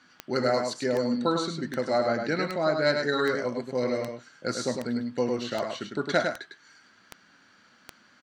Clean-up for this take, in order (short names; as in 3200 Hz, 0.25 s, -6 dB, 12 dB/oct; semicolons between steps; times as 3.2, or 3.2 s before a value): de-click; inverse comb 0.103 s -5.5 dB